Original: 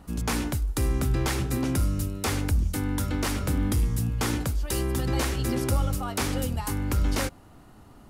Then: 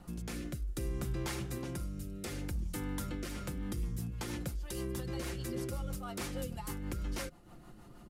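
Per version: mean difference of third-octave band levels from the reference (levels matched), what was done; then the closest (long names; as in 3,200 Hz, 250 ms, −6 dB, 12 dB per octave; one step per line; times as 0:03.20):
3.0 dB: comb filter 5.7 ms, depth 52%
downward compressor 2 to 1, threshold −38 dBFS, peak gain reduction 10.5 dB
rotating-speaker cabinet horn 0.6 Hz, later 6.3 Hz, at 0:02.94
level −2 dB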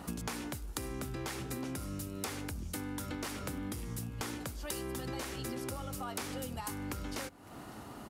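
4.5 dB: high-pass filter 220 Hz 6 dB per octave
downward compressor 16 to 1, threshold −43 dBFS, peak gain reduction 19 dB
on a send: single-tap delay 557 ms −22 dB
on the sum: level +7 dB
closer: first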